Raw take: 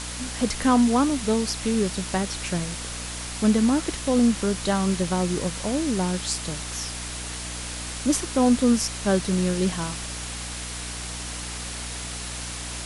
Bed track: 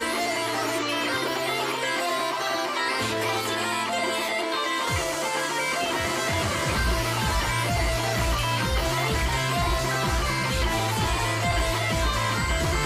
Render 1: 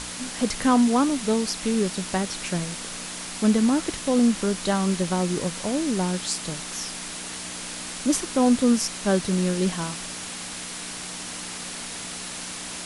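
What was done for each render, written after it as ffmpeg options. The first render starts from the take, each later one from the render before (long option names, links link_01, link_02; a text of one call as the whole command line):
ffmpeg -i in.wav -af "bandreject=frequency=60:width_type=h:width=6,bandreject=frequency=120:width_type=h:width=6" out.wav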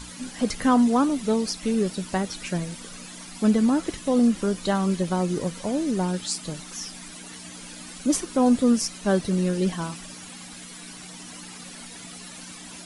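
ffmpeg -i in.wav -af "afftdn=noise_reduction=12:noise_floor=-35" out.wav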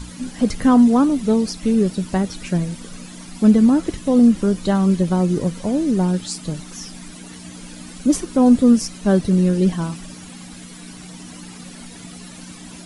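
ffmpeg -i in.wav -af "lowshelf=frequency=390:gain=10" out.wav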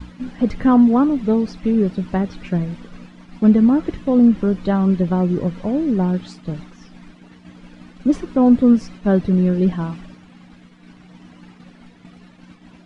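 ffmpeg -i in.wav -af "lowpass=2600,agate=range=-33dB:threshold=-32dB:ratio=3:detection=peak" out.wav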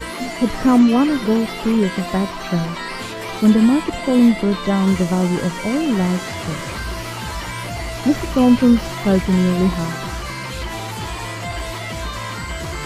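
ffmpeg -i in.wav -i bed.wav -filter_complex "[1:a]volume=-2.5dB[link_01];[0:a][link_01]amix=inputs=2:normalize=0" out.wav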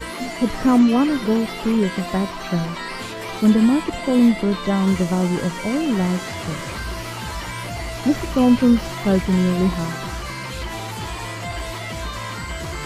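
ffmpeg -i in.wav -af "volume=-2dB" out.wav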